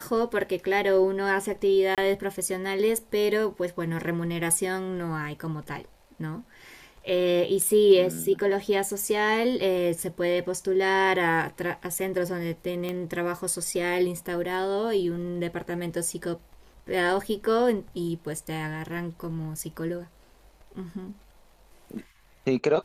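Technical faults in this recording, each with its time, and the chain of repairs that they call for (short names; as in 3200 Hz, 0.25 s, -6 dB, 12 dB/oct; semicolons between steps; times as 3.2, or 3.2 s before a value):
1.95–1.98 gap 27 ms
12.89 pop -18 dBFS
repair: de-click; interpolate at 1.95, 27 ms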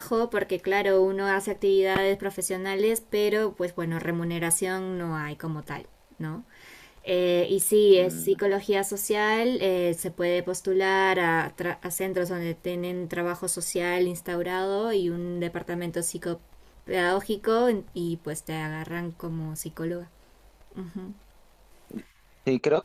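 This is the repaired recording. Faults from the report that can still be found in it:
none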